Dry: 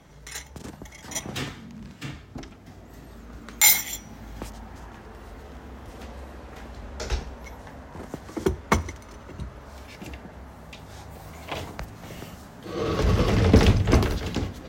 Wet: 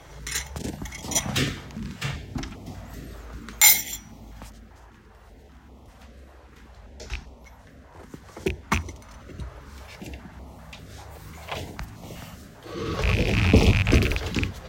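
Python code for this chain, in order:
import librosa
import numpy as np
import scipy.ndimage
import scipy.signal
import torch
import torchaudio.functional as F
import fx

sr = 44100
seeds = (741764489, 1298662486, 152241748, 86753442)

y = fx.rattle_buzz(x, sr, strikes_db=-22.0, level_db=-12.0)
y = fx.rider(y, sr, range_db=10, speed_s=2.0)
y = fx.filter_held_notch(y, sr, hz=5.1, low_hz=210.0, high_hz=1600.0)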